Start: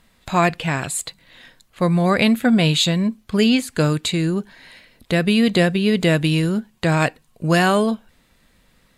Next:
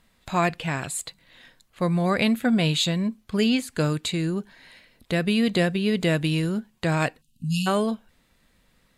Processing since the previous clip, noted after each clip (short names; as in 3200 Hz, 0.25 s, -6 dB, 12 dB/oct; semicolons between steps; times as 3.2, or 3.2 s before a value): spectral delete 7.22–7.67, 290–2500 Hz; gain -5.5 dB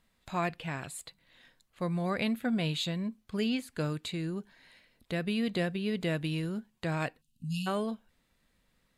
dynamic EQ 7200 Hz, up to -5 dB, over -48 dBFS, Q 1.3; gain -9 dB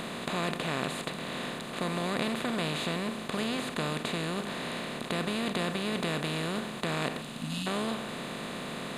per-bin compression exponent 0.2; gain -7 dB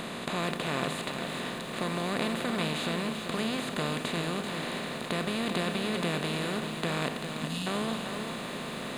lo-fi delay 0.391 s, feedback 35%, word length 9-bit, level -7 dB